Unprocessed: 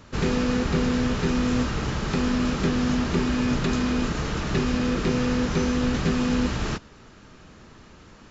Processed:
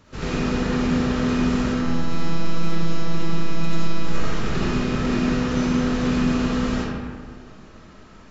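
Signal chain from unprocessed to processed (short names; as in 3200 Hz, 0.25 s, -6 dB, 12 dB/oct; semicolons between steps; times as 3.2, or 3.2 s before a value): 1.68–4.07 robotiser 166 Hz; hard clip -10.5 dBFS, distortion -46 dB; digital reverb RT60 1.8 s, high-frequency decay 0.5×, pre-delay 25 ms, DRR -7 dB; gain -6 dB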